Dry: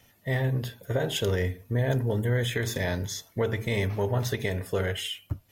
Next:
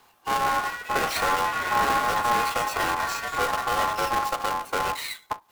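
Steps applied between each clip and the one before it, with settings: half-waves squared off; ring modulator 950 Hz; echoes that change speed 0.246 s, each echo +5 st, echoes 3, each echo -6 dB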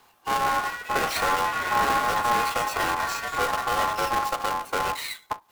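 nothing audible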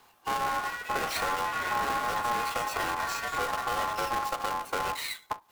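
compressor 2.5:1, threshold -27 dBFS, peak gain reduction 6 dB; gain -1.5 dB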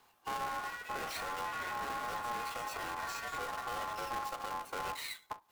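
limiter -24 dBFS, peak gain reduction 5 dB; gain -7 dB

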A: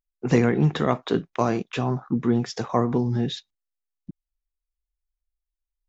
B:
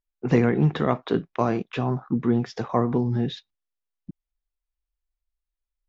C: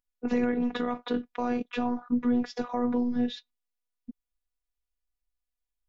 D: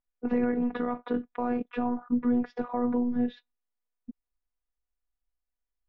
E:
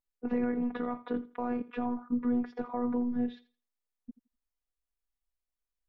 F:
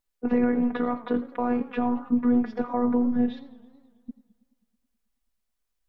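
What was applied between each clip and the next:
air absorption 150 m
limiter -15 dBFS, peak gain reduction 8.5 dB; robotiser 244 Hz
LPF 1800 Hz 12 dB/oct
thinning echo 83 ms, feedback 22%, high-pass 180 Hz, level -17 dB; gain -4 dB
warbling echo 0.108 s, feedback 67%, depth 196 cents, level -21 dB; gain +7.5 dB

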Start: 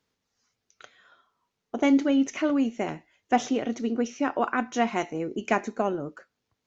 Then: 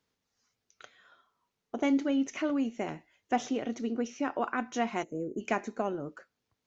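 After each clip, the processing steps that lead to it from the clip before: spectral gain 5.03–5.41, 660–6300 Hz -20 dB; in parallel at -2.5 dB: compressor, threshold -32 dBFS, peak gain reduction 15 dB; on the sum: gain -7.5 dB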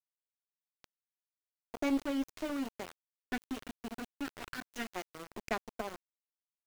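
added harmonics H 3 -19 dB, 4 -19 dB, 7 -31 dB, 8 -43 dB, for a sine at -15 dBFS; spectral gain 3.32–4.9, 450–1300 Hz -12 dB; sample gate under -36.5 dBFS; gain -2 dB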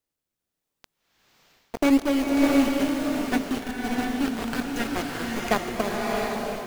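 in parallel at -5.5 dB: decimation with a swept rate 31×, swing 100% 0.85 Hz; on the sum: bloom reverb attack 0.69 s, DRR -1.5 dB; gain +8.5 dB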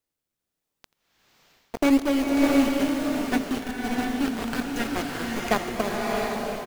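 echo 85 ms -21.5 dB

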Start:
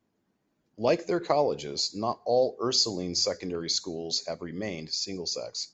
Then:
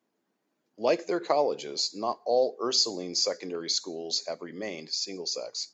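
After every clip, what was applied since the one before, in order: HPF 280 Hz 12 dB/oct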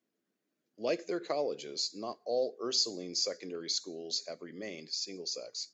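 bell 900 Hz -11 dB 0.67 oct; gain -5 dB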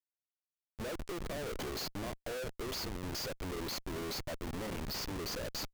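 compressor 8:1, threshold -39 dBFS, peak gain reduction 14.5 dB; thin delay 0.137 s, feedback 66%, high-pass 5300 Hz, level -22 dB; Schmitt trigger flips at -46 dBFS; gain +6 dB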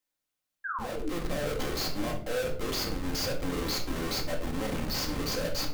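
painted sound fall, 0.64–1.11, 260–1700 Hz -41 dBFS; limiter -41 dBFS, peak gain reduction 11 dB; shoebox room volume 630 m³, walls furnished, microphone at 2.1 m; gain +8 dB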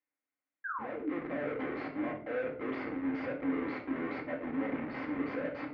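speaker cabinet 180–2100 Hz, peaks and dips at 190 Hz -9 dB, 270 Hz +10 dB, 2100 Hz +8 dB; gain -4 dB

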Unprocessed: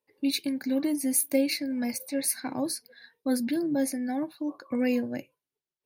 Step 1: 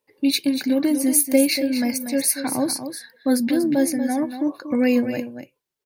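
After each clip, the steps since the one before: echo 0.238 s -9.5 dB; gain +7.5 dB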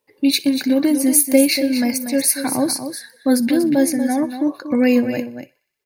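thinning echo 61 ms, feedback 66%, high-pass 940 Hz, level -21 dB; gain +3.5 dB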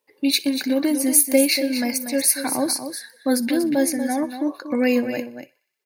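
HPF 330 Hz 6 dB/oct; gain -1 dB

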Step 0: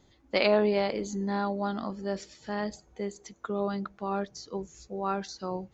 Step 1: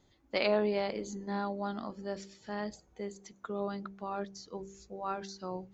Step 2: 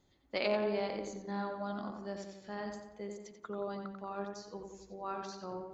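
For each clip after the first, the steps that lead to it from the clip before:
de-hum 65.22 Hz, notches 8; gain -5 dB
tape echo 89 ms, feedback 56%, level -4 dB, low-pass 2800 Hz; gain -4 dB

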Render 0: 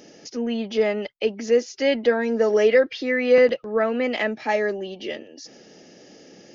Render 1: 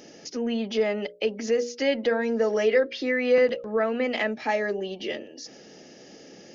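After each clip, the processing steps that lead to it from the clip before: notches 60/120/180/240/300/360/420/480/540/600 Hz; in parallel at +2 dB: compressor, threshold -26 dBFS, peak gain reduction 13.5 dB; on the sum: gain -6.5 dB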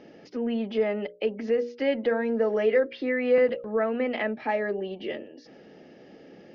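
air absorption 350 m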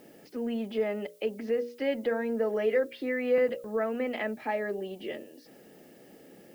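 added noise blue -60 dBFS; gain -4 dB

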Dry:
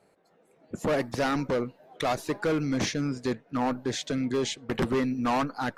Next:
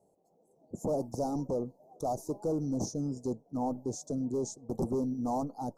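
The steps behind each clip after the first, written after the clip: elliptic band-stop 820–6000 Hz, stop band 70 dB; gain -4 dB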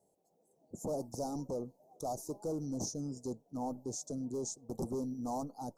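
high shelf 2500 Hz +8.5 dB; gain -6 dB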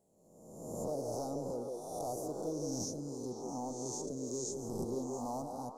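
spectral swells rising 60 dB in 1.20 s; delay with a stepping band-pass 0.171 s, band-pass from 450 Hz, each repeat 1.4 oct, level -1 dB; gain -4 dB

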